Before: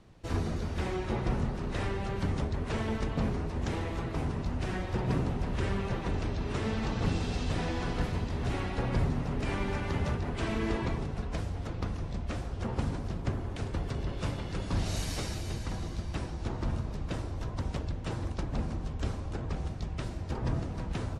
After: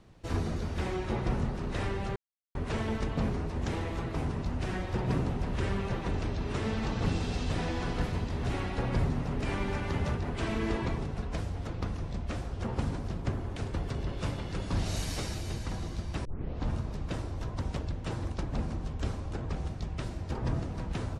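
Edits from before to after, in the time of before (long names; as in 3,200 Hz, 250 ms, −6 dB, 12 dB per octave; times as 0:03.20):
0:02.16–0:02.55: silence
0:16.25: tape start 0.45 s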